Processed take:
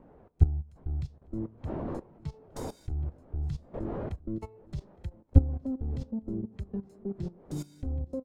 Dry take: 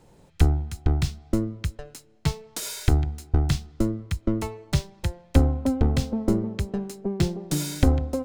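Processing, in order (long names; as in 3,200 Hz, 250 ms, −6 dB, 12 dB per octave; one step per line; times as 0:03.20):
wind on the microphone 600 Hz −32 dBFS
single-tap delay 864 ms −19.5 dB
output level in coarse steps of 14 dB
every bin expanded away from the loudest bin 1.5 to 1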